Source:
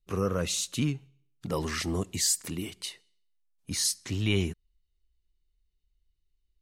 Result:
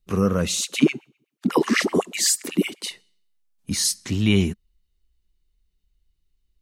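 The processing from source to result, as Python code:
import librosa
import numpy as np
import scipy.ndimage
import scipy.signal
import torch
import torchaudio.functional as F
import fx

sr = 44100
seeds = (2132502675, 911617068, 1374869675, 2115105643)

y = fx.peak_eq(x, sr, hz=210.0, db=7.5, octaves=0.52)
y = fx.filter_lfo_highpass(y, sr, shape='sine', hz=8.0, low_hz=220.0, high_hz=2500.0, q=6.6, at=(0.57, 2.89), fade=0.02)
y = F.gain(torch.from_numpy(y), 5.5).numpy()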